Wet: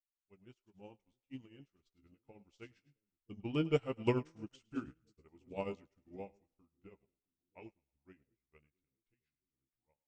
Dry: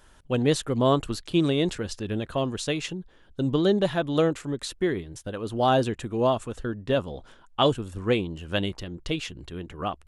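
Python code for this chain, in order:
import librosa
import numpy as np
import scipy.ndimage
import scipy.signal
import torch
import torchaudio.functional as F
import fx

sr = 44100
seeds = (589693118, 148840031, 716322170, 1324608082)

p1 = fx.pitch_heads(x, sr, semitones=-4.5)
p2 = fx.doppler_pass(p1, sr, speed_mps=10, closest_m=10.0, pass_at_s=4.21)
p3 = fx.notch(p2, sr, hz=1100.0, q=16.0)
p4 = fx.doubler(p3, sr, ms=15.0, db=-9)
p5 = p4 + fx.echo_split(p4, sr, split_hz=430.0, low_ms=665, high_ms=105, feedback_pct=52, wet_db=-13, dry=0)
p6 = fx.upward_expand(p5, sr, threshold_db=-45.0, expansion=2.5)
y = p6 * 10.0 ** (-5.0 / 20.0)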